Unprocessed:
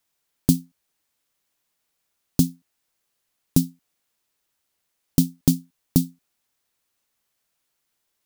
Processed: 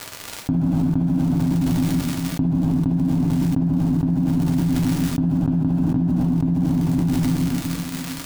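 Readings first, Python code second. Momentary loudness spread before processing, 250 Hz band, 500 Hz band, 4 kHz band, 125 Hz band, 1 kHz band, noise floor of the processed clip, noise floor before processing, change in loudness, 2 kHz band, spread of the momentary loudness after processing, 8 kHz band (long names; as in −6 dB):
6 LU, +8.5 dB, +7.5 dB, +4.0 dB, +10.0 dB, +18.0 dB, −35 dBFS, −77 dBFS, +3.5 dB, can't be measured, 4 LU, −1.5 dB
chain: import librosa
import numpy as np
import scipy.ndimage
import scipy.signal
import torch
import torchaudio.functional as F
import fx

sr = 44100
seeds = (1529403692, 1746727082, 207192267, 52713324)

p1 = scipy.signal.sosfilt(scipy.signal.butter(4, 1900.0, 'lowpass', fs=sr, output='sos'), x)
p2 = fx.dmg_crackle(p1, sr, seeds[0], per_s=120.0, level_db=-49.0)
p3 = np.clip(p2, -10.0 ** (-7.5 / 20.0), 10.0 ** (-7.5 / 20.0))
p4 = p3 + fx.echo_single(p3, sr, ms=466, db=-4.0, dry=0)
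p5 = fx.rev_double_slope(p4, sr, seeds[1], early_s=0.4, late_s=2.9, knee_db=-15, drr_db=0.5)
p6 = fx.env_flatten(p5, sr, amount_pct=100)
y = p6 * 10.0 ** (-7.0 / 20.0)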